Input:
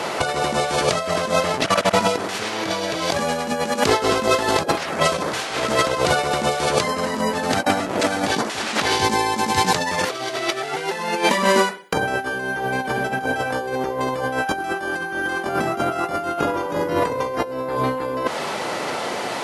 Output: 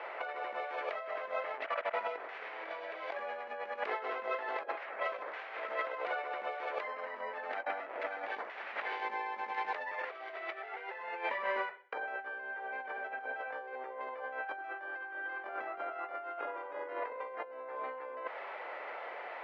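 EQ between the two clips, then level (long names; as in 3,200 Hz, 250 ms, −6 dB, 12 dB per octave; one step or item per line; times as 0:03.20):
four-pole ladder high-pass 430 Hz, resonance 30%
transistor ladder low-pass 2,500 Hz, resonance 45%
−4.5 dB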